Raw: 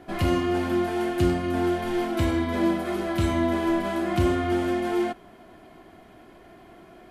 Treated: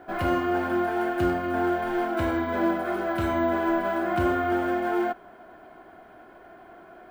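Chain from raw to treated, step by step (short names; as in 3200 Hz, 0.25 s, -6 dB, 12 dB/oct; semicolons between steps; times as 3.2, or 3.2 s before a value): bell 1500 Hz +10.5 dB 0.22 oct; careless resampling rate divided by 2×, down none, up hold; EQ curve 170 Hz 0 dB, 750 Hz +11 dB, 4400 Hz -1 dB; gain -7 dB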